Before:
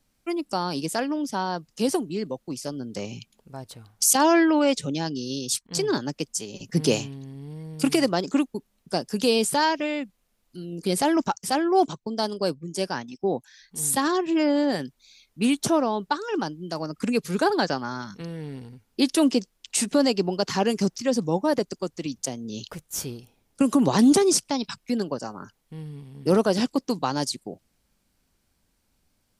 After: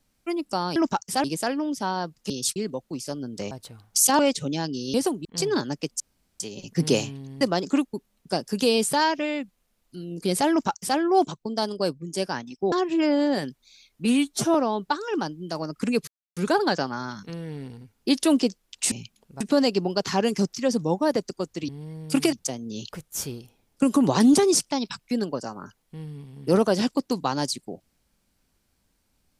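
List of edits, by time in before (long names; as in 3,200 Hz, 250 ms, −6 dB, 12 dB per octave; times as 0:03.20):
0:01.82–0:02.13: swap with 0:05.36–0:05.62
0:03.08–0:03.57: move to 0:19.83
0:04.25–0:04.61: remove
0:06.37: splice in room tone 0.40 s
0:07.38–0:08.02: move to 0:22.11
0:11.11–0:11.59: duplicate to 0:00.76
0:13.33–0:14.09: remove
0:15.42–0:15.75: time-stretch 1.5×
0:17.28: splice in silence 0.29 s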